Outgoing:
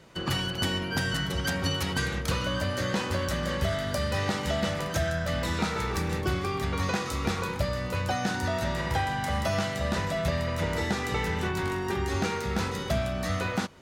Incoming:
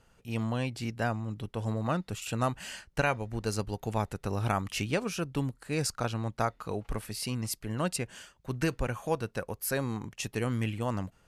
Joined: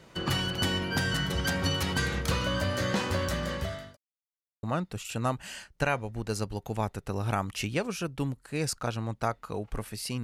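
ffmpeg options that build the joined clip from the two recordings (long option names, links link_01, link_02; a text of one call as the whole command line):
ffmpeg -i cue0.wav -i cue1.wav -filter_complex "[0:a]apad=whole_dur=10.23,atrim=end=10.23,asplit=2[link_01][link_02];[link_01]atrim=end=3.97,asetpts=PTS-STARTPTS,afade=type=out:start_time=3.03:duration=0.94:curve=qsin[link_03];[link_02]atrim=start=3.97:end=4.63,asetpts=PTS-STARTPTS,volume=0[link_04];[1:a]atrim=start=1.8:end=7.4,asetpts=PTS-STARTPTS,afade=type=in:duration=0.004:curve=hsin[link_05];[link_03][link_04][link_05]concat=n=3:v=0:a=1" out.wav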